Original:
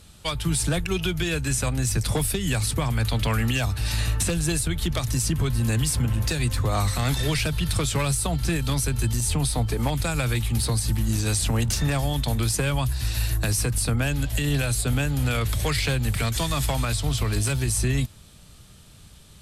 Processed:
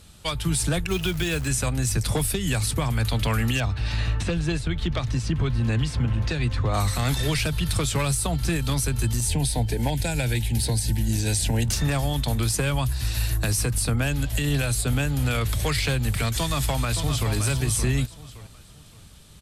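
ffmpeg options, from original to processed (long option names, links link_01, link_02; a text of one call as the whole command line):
ffmpeg -i in.wav -filter_complex "[0:a]asplit=3[link_01][link_02][link_03];[link_01]afade=type=out:start_time=0.89:duration=0.02[link_04];[link_02]acrusher=bits=4:mode=log:mix=0:aa=0.000001,afade=type=in:start_time=0.89:duration=0.02,afade=type=out:start_time=1.46:duration=0.02[link_05];[link_03]afade=type=in:start_time=1.46:duration=0.02[link_06];[link_04][link_05][link_06]amix=inputs=3:normalize=0,asettb=1/sr,asplit=3[link_07][link_08][link_09];[link_07]atrim=end=3.604[link_10];[link_08]atrim=start=3.6:end=6.74,asetpts=PTS-STARTPTS,afade=type=in:duration=0.004:curve=qsin,afade=type=out:start_time=3.136:duration=0.004:curve=qsin,lowpass=3800[link_11];[link_09]atrim=start=6.736[link_12];[link_10][link_11]acrossfade=duration=0.004:curve1=hsin:curve2=qsin[link_13];[link_13][link_12]acrossfade=duration=0.004:curve1=qsin:curve2=hsin,asettb=1/sr,asplit=3[link_14][link_15][link_16];[link_14]atrim=end=9.274[link_17];[link_15]atrim=start=9.27:end=11.67,asetpts=PTS-STARTPTS,afade=type=in:duration=0.004:curve=qsin,afade=type=out:start_time=2.396:duration=0.004:curve=qsin,asuperstop=centerf=1200:order=4:qfactor=2.3[link_18];[link_16]atrim=start=11.666[link_19];[link_17][link_18]acrossfade=duration=0.004:curve1=hsin:curve2=qsin[link_20];[link_20][link_19]acrossfade=duration=0.004:curve1=qsin:curve2=hsin,asplit=2[link_21][link_22];[link_22]afade=type=in:start_time=16.36:duration=0.01,afade=type=out:start_time=17.32:duration=0.01,aecho=0:1:570|1140|1710|2280:0.398107|0.119432|0.0358296|0.0107489[link_23];[link_21][link_23]amix=inputs=2:normalize=0" out.wav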